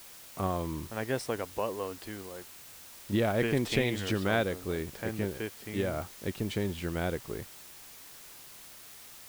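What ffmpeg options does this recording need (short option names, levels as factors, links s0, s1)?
-af "adeclick=t=4,afwtdn=0.0032"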